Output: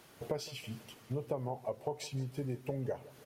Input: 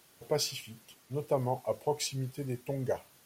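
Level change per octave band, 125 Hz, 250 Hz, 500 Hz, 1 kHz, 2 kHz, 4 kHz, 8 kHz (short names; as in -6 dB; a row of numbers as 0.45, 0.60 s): -2.5, -2.0, -5.5, -6.5, -5.0, -9.0, -11.5 dB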